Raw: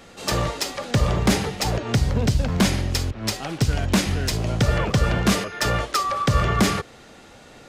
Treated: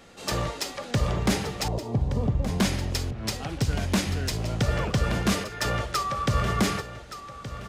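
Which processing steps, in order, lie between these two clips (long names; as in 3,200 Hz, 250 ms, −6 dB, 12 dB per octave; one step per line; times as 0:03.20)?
0:01.68–0:02.60: Butterworth low-pass 1,100 Hz 96 dB per octave
repeating echo 1,172 ms, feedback 28%, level −13 dB
level −5 dB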